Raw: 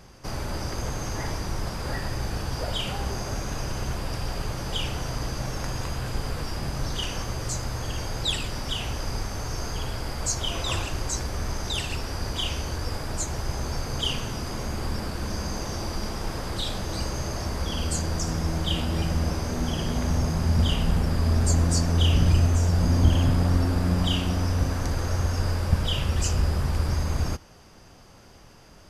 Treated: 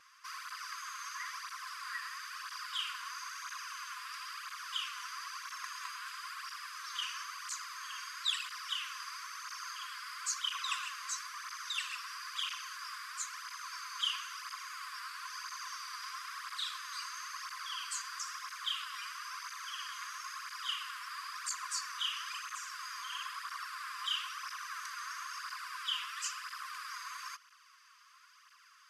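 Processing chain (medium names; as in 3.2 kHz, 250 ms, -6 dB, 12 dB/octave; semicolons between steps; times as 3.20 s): brick-wall FIR high-pass 1 kHz; treble shelf 2.1 kHz -9.5 dB; cancelling through-zero flanger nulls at 1 Hz, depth 4.8 ms; trim +3.5 dB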